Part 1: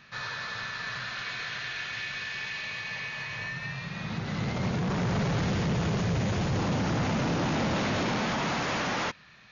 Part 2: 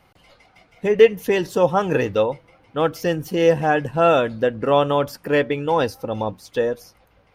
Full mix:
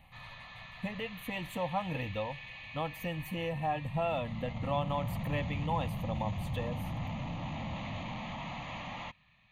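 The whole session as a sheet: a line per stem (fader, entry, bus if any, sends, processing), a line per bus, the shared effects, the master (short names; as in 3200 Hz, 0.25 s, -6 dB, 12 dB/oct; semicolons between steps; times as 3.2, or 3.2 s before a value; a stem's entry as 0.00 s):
-9.5 dB, 0.00 s, no send, dry
-4.0 dB, 0.00 s, no send, compressor 2:1, threshold -29 dBFS, peak gain reduction 12.5 dB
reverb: off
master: low shelf 84 Hz +10 dB; fixed phaser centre 1500 Hz, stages 6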